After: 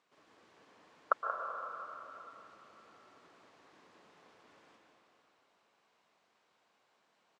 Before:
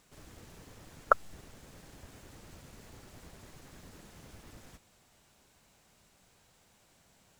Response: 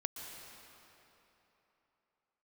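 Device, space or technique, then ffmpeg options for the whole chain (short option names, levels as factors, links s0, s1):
station announcement: -filter_complex "[0:a]highpass=340,lowpass=4000,equalizer=f=1100:t=o:w=0.35:g=5.5,aecho=1:1:148.7|180.8:0.251|0.355[s0];[1:a]atrim=start_sample=2205[s1];[s0][s1]afir=irnorm=-1:irlink=0,volume=0.473"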